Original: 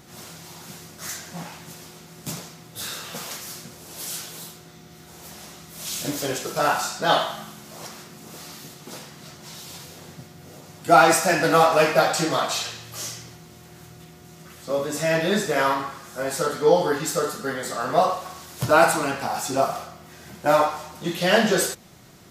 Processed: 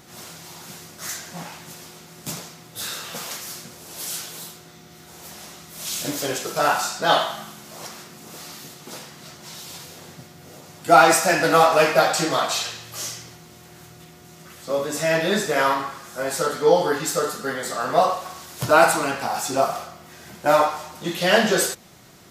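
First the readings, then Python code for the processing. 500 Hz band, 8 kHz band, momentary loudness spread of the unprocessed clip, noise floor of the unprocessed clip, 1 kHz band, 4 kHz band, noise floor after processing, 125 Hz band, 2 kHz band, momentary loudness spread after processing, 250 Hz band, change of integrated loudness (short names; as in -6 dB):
+1.0 dB, +2.0 dB, 22 LU, -47 dBFS, +1.5 dB, +2.0 dB, -46 dBFS, -1.5 dB, +2.0 dB, 22 LU, -0.5 dB, +1.5 dB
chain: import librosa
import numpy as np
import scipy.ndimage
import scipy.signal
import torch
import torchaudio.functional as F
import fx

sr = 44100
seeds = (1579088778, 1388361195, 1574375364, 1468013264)

y = fx.low_shelf(x, sr, hz=280.0, db=-4.5)
y = F.gain(torch.from_numpy(y), 2.0).numpy()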